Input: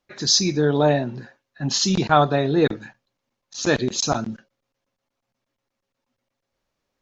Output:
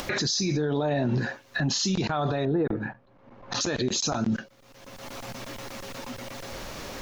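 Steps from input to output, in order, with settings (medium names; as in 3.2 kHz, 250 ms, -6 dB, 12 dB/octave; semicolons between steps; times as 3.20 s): 2.45–3.61 s: low-pass 1.3 kHz 12 dB/octave; upward compressor, threshold -19 dBFS; peak limiter -26 dBFS, peak gain reduction 21.5 dB; trim +7.5 dB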